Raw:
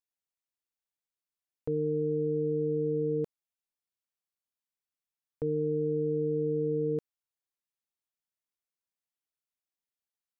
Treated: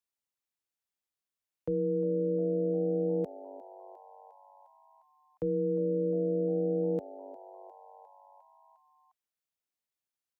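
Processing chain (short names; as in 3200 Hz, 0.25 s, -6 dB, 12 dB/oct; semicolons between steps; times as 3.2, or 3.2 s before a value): frequency shift +24 Hz; frequency-shifting echo 0.354 s, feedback 64%, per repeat +96 Hz, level -18.5 dB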